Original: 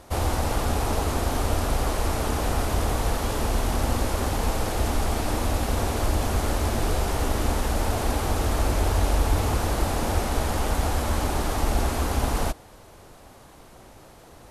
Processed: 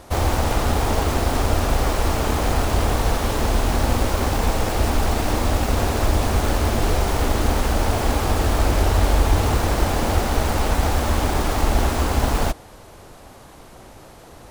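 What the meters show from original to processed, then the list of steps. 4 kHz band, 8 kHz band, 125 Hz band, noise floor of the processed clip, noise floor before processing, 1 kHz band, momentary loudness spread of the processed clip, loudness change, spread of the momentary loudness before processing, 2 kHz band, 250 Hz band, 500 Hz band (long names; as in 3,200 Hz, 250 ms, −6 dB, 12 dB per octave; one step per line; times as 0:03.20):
+5.0 dB, +3.0 dB, +4.5 dB, −44 dBFS, −49 dBFS, +4.5 dB, 2 LU, +4.5 dB, 2 LU, +5.5 dB, +4.5 dB, +4.5 dB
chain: phase distortion by the signal itself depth 0.32 ms
level +5 dB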